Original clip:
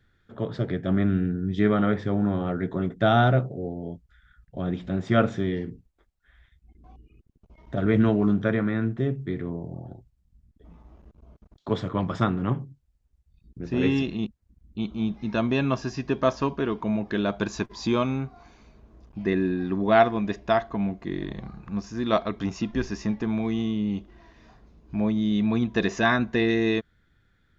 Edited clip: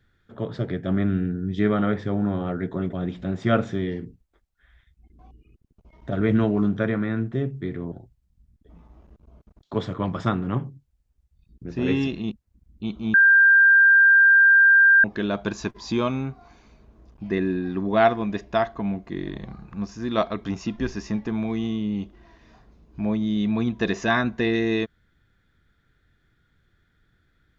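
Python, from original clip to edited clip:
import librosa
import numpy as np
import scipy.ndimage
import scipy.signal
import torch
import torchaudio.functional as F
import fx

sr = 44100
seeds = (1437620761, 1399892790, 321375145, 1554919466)

y = fx.edit(x, sr, fx.cut(start_s=2.93, length_s=1.65),
    fx.cut(start_s=9.57, length_s=0.3),
    fx.bleep(start_s=15.09, length_s=1.9, hz=1590.0, db=-11.0), tone=tone)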